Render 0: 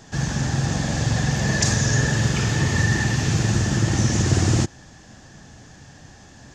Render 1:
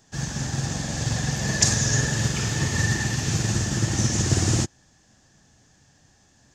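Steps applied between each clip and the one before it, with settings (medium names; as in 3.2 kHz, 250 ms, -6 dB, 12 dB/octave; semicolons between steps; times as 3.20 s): treble shelf 5.5 kHz +10 dB; upward expansion 1.5:1, over -39 dBFS; trim -1.5 dB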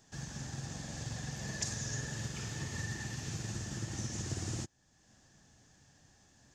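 compression 1.5:1, threshold -50 dBFS, peak gain reduction 13 dB; trim -5.5 dB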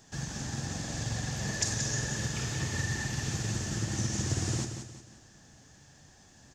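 feedback delay 179 ms, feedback 40%, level -8 dB; trim +6.5 dB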